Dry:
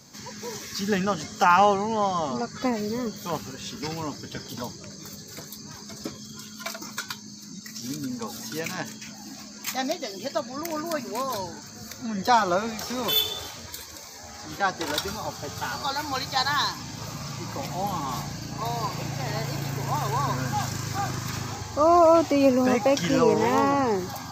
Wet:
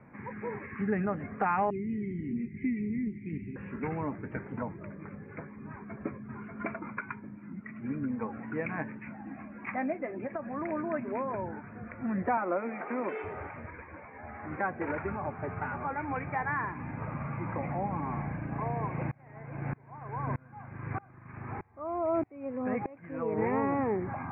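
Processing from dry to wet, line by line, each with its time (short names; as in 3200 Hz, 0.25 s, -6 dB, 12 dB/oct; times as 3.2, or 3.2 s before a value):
1.7–3.56 Chebyshev band-stop 380–2000 Hz, order 5
5.69–6.2 echo throw 0.59 s, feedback 15%, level -3.5 dB
10.12–10.61 compressor, threshold -30 dBFS
12.37–13.24 HPF 230 Hz 24 dB/oct
19.11–23.38 dB-ramp tremolo swelling 1.6 Hz, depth 30 dB
whole clip: steep low-pass 2400 Hz 96 dB/oct; dynamic EQ 1100 Hz, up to -6 dB, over -36 dBFS, Q 0.97; compressor 2:1, threshold -29 dBFS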